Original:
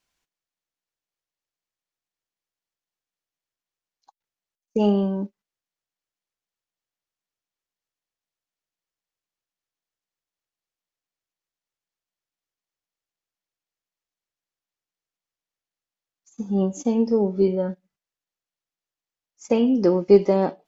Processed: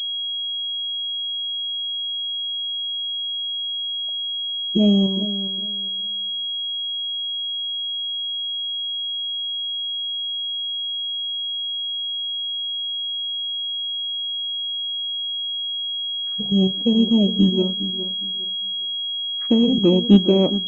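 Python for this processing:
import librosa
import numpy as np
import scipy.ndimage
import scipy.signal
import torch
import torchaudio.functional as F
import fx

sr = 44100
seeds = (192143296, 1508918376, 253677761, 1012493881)

p1 = fx.level_steps(x, sr, step_db=23)
p2 = x + (p1 * librosa.db_to_amplitude(-1.0))
p3 = fx.formant_shift(p2, sr, semitones=-5)
p4 = p3 + fx.echo_feedback(p3, sr, ms=410, feedback_pct=23, wet_db=-13.0, dry=0)
p5 = fx.env_lowpass_down(p4, sr, base_hz=1200.0, full_db=-31.0)
y = fx.pwm(p5, sr, carrier_hz=3300.0)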